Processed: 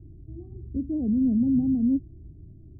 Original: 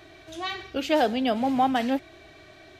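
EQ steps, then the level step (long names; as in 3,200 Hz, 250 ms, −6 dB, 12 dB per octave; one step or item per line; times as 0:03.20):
inverse Chebyshev low-pass filter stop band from 1,400 Hz, stop band 80 dB
low-shelf EQ 100 Hz +9.5 dB
+8.5 dB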